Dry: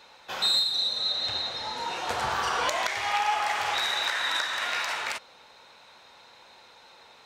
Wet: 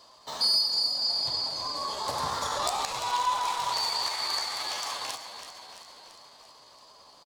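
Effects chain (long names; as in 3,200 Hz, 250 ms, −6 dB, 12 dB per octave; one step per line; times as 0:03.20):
flat-topped bell 1,700 Hz −11.5 dB 1.3 octaves
echo with shifted repeats 336 ms, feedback 60%, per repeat −30 Hz, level −10.5 dB
pitch shifter +3 semitones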